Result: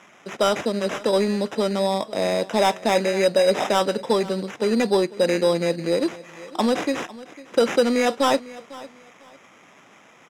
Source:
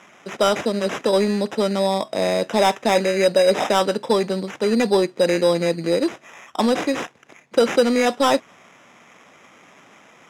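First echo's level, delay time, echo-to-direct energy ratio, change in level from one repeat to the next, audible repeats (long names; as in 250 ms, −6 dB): −19.0 dB, 501 ms, −19.0 dB, −12.0 dB, 2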